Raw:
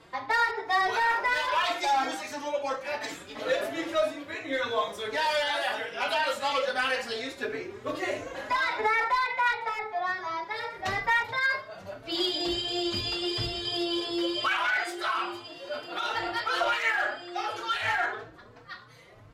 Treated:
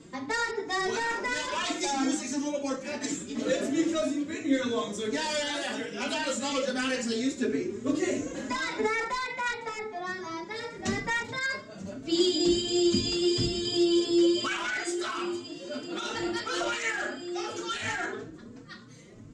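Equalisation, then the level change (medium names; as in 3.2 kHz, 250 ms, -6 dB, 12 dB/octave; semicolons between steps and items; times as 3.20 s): FFT filter 110 Hz 0 dB, 230 Hz +14 dB, 750 Hz -10 dB, 4.4 kHz -3 dB, 7.4 kHz +11 dB, 12 kHz -16 dB; +2.0 dB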